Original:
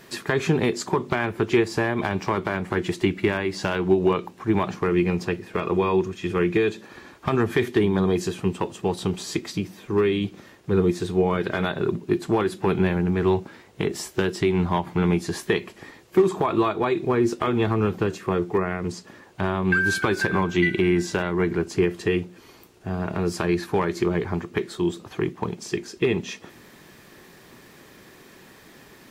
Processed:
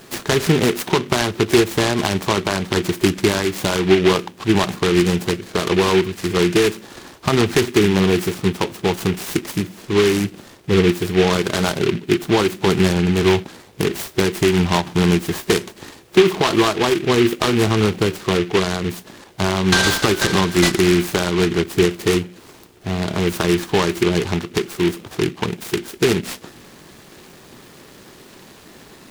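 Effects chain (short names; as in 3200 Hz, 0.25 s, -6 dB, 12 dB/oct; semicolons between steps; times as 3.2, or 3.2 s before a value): noise-modulated delay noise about 2200 Hz, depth 0.11 ms; gain +5.5 dB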